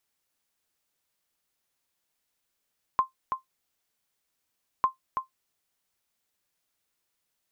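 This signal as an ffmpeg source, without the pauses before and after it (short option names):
-f lavfi -i "aevalsrc='0.211*(sin(2*PI*1050*mod(t,1.85))*exp(-6.91*mod(t,1.85)/0.13)+0.473*sin(2*PI*1050*max(mod(t,1.85)-0.33,0))*exp(-6.91*max(mod(t,1.85)-0.33,0)/0.13))':d=3.7:s=44100"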